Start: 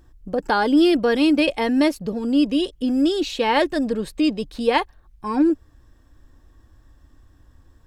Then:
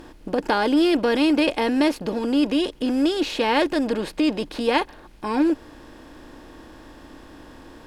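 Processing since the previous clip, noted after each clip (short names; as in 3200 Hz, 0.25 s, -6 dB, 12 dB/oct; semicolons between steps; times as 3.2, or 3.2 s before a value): per-bin compression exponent 0.6; gain -4 dB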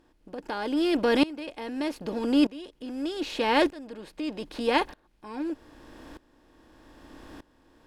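dB-ramp tremolo swelling 0.81 Hz, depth 21 dB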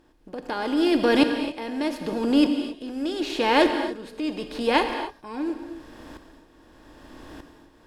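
non-linear reverb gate 0.3 s flat, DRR 6 dB; gain +3 dB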